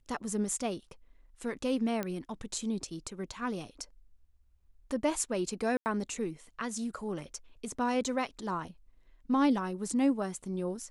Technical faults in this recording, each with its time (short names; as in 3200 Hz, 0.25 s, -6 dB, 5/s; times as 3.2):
2.03 pop -19 dBFS
5.77–5.86 gap 89 ms